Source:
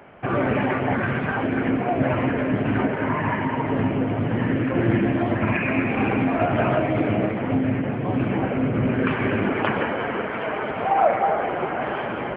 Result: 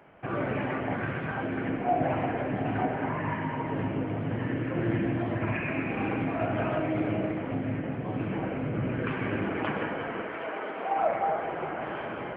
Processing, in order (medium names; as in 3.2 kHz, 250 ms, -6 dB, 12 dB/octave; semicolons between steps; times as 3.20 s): 1.84–3.09 s: peaking EQ 750 Hz +11.5 dB 0.28 oct; 10.23–10.97 s: high-pass 230 Hz 24 dB/octave; reverberation RT60 1.1 s, pre-delay 6 ms, DRR 6.5 dB; trim -9 dB